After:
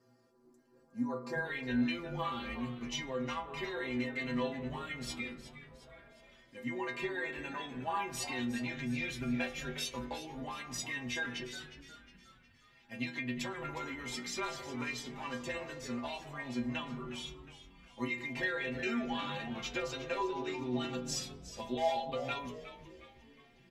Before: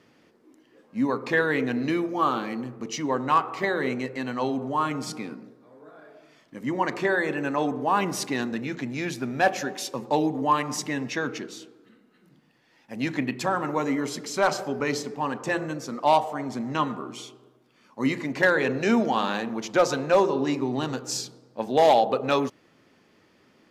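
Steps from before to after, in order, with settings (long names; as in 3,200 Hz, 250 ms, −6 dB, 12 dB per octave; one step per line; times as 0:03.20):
flat-topped bell 2,700 Hz −11 dB 1.2 octaves, from 0:01.44 +8 dB
downward compressor, threshold −25 dBFS, peak gain reduction 11.5 dB
stiff-string resonator 120 Hz, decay 0.44 s, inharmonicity 0.008
echo with shifted repeats 361 ms, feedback 48%, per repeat −94 Hz, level −13 dB
level +4 dB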